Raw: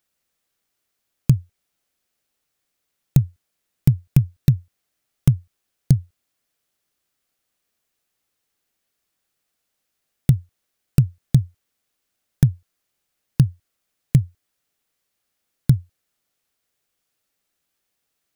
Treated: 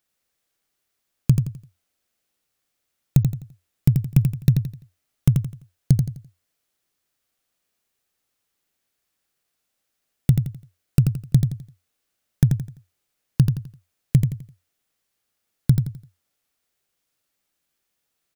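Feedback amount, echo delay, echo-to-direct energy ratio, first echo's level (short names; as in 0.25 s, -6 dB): 33%, 85 ms, -5.0 dB, -5.5 dB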